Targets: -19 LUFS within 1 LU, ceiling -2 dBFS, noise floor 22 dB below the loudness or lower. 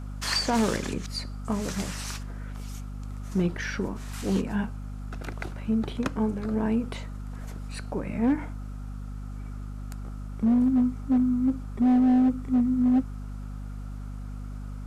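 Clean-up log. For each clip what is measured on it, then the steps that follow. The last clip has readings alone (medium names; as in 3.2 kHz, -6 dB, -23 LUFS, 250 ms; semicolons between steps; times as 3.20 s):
clipped samples 1.7%; clipping level -17.5 dBFS; hum 50 Hz; highest harmonic 250 Hz; hum level -33 dBFS; loudness -27.0 LUFS; peak level -17.5 dBFS; loudness target -19.0 LUFS
-> clip repair -17.5 dBFS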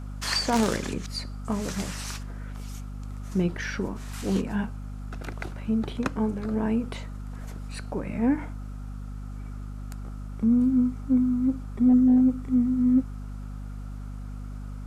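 clipped samples 0.0%; hum 50 Hz; highest harmonic 250 Hz; hum level -32 dBFS
-> de-hum 50 Hz, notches 5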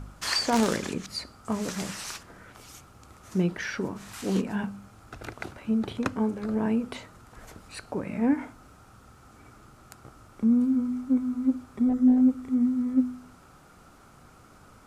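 hum not found; loudness -27.5 LUFS; peak level -8.5 dBFS; loudness target -19.0 LUFS
-> trim +8.5 dB; peak limiter -2 dBFS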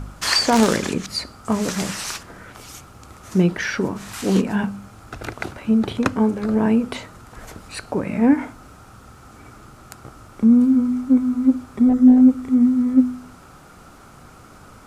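loudness -19.0 LUFS; peak level -2.0 dBFS; noise floor -45 dBFS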